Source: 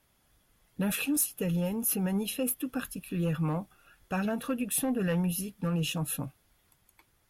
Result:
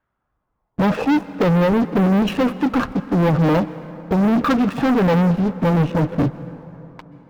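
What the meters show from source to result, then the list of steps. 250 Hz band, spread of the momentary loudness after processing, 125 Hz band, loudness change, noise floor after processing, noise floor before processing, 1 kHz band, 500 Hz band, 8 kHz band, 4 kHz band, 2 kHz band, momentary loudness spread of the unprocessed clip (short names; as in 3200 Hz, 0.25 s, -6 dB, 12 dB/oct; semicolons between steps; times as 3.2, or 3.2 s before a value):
+14.0 dB, 7 LU, +13.0 dB, +12.5 dB, -75 dBFS, -70 dBFS, +18.5 dB, +15.5 dB, under -10 dB, +6.0 dB, +12.0 dB, 8 LU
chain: dynamic EQ 300 Hz, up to +5 dB, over -46 dBFS, Q 5.3; LFO low-pass saw down 0.45 Hz 320–1500 Hz; sample leveller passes 5; bell 8600 Hz -7.5 dB 0.64 oct; plate-style reverb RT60 3.7 s, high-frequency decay 0.5×, pre-delay 0.115 s, DRR 15 dB; running maximum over 3 samples; gain +3.5 dB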